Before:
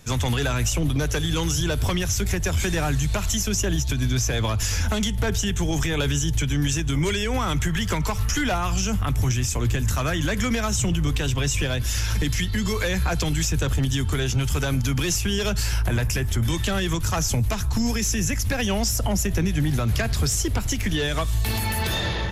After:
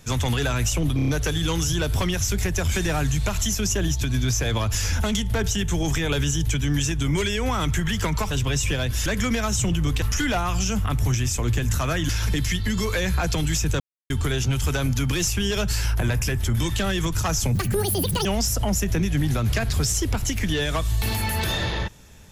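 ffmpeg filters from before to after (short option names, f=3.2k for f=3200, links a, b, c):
-filter_complex "[0:a]asplit=13[a][b][c][d][e][f][g][h][i][j][k][l][m];[a]atrim=end=0.992[n];[b]atrim=start=0.958:end=0.992[o];[c]atrim=start=0.958:end=0.992[p];[d]atrim=start=0.958:end=0.992[q];[e]atrim=start=0.958:end=8.192[r];[f]atrim=start=11.218:end=11.972[s];[g]atrim=start=10.258:end=11.222[t];[h]atrim=start=8.188:end=10.262[u];[i]atrim=start=11.968:end=13.68,asetpts=PTS-STARTPTS,afade=t=out:st=1.708:d=0.004:c=hsin[v];[j]atrim=start=13.68:end=13.98,asetpts=PTS-STARTPTS,volume=0[w];[k]atrim=start=13.98:end=17.434,asetpts=PTS-STARTPTS,afade=t=in:d=0.004:c=hsin[x];[l]atrim=start=17.43:end=18.68,asetpts=PTS-STARTPTS,asetrate=78498,aresample=44100,atrim=end_sample=30969,asetpts=PTS-STARTPTS[y];[m]atrim=start=18.676[z];[n][o]acrossfade=d=0.004:c1=hsin:c2=hsin[aa];[aa][p]acrossfade=d=0.004:c1=hsin:c2=hsin[ab];[ab][q]acrossfade=d=0.004:c1=hsin:c2=hsin[ac];[ac][r]acrossfade=d=0.004:c1=hsin:c2=hsin[ad];[ad][s]acrossfade=d=0.004:c1=hsin:c2=hsin[ae];[ae][t]acrossfade=d=0.004:c1=hsin:c2=hsin[af];[af][u]acrossfade=d=0.004:c1=hsin:c2=hsin[ag];[v][w][x]concat=n=3:v=0:a=1[ah];[ag][ah]acrossfade=d=0.004:c1=hsin:c2=hsin[ai];[ai][y]acrossfade=d=0.004:c1=hsin:c2=hsin[aj];[aj][z]acrossfade=d=0.004:c1=hsin:c2=hsin"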